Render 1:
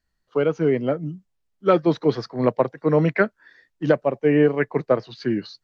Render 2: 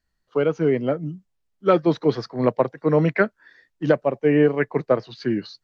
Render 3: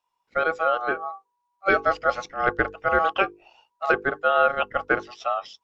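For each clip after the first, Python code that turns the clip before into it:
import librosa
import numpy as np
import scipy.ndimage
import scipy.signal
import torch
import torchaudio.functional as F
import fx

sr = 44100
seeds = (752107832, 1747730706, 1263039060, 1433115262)

y1 = x
y2 = y1 * np.sin(2.0 * np.pi * 970.0 * np.arange(len(y1)) / sr)
y2 = fx.hum_notches(y2, sr, base_hz=50, count=10)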